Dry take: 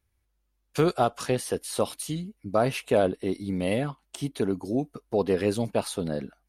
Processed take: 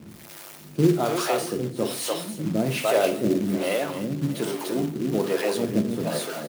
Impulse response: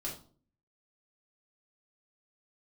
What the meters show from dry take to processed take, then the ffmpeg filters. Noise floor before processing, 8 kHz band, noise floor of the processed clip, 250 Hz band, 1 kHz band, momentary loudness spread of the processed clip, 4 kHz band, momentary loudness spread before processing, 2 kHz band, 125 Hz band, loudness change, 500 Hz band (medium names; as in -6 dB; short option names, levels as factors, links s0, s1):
-75 dBFS, +4.0 dB, -45 dBFS, +4.5 dB, +0.5 dB, 7 LU, +5.0 dB, 9 LU, +4.5 dB, +3.0 dB, +2.5 dB, +1.5 dB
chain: -filter_complex "[0:a]aeval=exprs='val(0)+0.5*0.0251*sgn(val(0))':c=same,aecho=1:1:295|590|885|1180:0.562|0.186|0.0612|0.0202,acrossover=split=5500[s0][s1];[s1]asoftclip=type=hard:threshold=0.0178[s2];[s0][s2]amix=inputs=2:normalize=0,acrossover=split=410[s3][s4];[s3]aeval=exprs='val(0)*(1-1/2+1/2*cos(2*PI*1.2*n/s))':c=same[s5];[s4]aeval=exprs='val(0)*(1-1/2-1/2*cos(2*PI*1.2*n/s))':c=same[s6];[s5][s6]amix=inputs=2:normalize=0,asplit=2[s7][s8];[s8]equalizer=f=350:t=o:w=0.26:g=5[s9];[1:a]atrim=start_sample=2205,highshelf=f=12000:g=8[s10];[s9][s10]afir=irnorm=-1:irlink=0,volume=0.596[s11];[s7][s11]amix=inputs=2:normalize=0,acrusher=bits=4:mode=log:mix=0:aa=0.000001,highpass=f=140:w=0.5412,highpass=f=140:w=1.3066,lowshelf=f=240:g=4"